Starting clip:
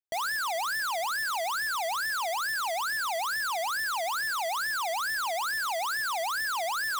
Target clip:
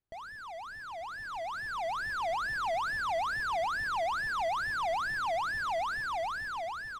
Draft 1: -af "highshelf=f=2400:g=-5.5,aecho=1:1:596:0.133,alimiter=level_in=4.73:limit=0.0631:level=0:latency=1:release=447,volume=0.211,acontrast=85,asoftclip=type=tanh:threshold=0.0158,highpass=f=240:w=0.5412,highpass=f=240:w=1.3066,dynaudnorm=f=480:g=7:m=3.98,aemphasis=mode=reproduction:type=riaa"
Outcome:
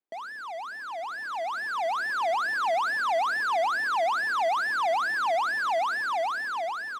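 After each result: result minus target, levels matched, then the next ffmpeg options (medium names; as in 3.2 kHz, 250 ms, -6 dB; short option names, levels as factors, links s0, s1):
saturation: distortion -5 dB; 250 Hz band -3.0 dB
-af "highshelf=f=2400:g=-5.5,aecho=1:1:596:0.133,alimiter=level_in=4.73:limit=0.0631:level=0:latency=1:release=447,volume=0.211,acontrast=85,asoftclip=type=tanh:threshold=0.00708,highpass=f=240:w=0.5412,highpass=f=240:w=1.3066,dynaudnorm=f=480:g=7:m=3.98,aemphasis=mode=reproduction:type=riaa"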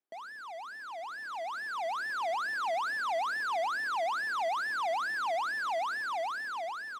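250 Hz band -3.5 dB
-af "highshelf=f=2400:g=-5.5,aecho=1:1:596:0.133,alimiter=level_in=4.73:limit=0.0631:level=0:latency=1:release=447,volume=0.211,acontrast=85,asoftclip=type=tanh:threshold=0.00708,dynaudnorm=f=480:g=7:m=3.98,aemphasis=mode=reproduction:type=riaa"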